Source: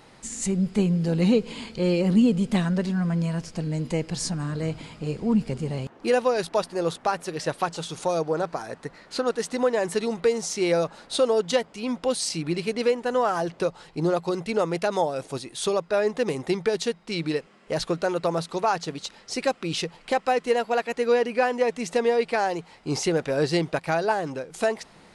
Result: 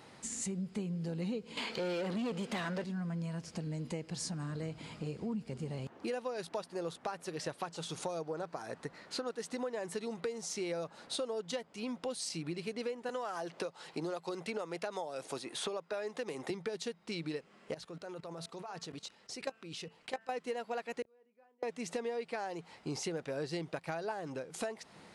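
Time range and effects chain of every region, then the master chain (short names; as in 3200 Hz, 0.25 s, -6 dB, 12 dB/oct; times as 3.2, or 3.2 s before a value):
1.57–2.84 tone controls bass -6 dB, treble 0 dB + overdrive pedal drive 23 dB, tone 2900 Hz, clips at -11.5 dBFS
13.09–16.5 HPF 390 Hz 6 dB/oct + three-band squash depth 70%
17.74–20.32 level quantiser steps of 20 dB + de-hum 223.1 Hz, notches 13
21.02–21.63 LPF 1600 Hz 6 dB/oct + flipped gate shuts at -28 dBFS, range -39 dB + doubler 31 ms -12.5 dB
whole clip: HPF 76 Hz; compressor 4:1, threshold -33 dBFS; gain -4 dB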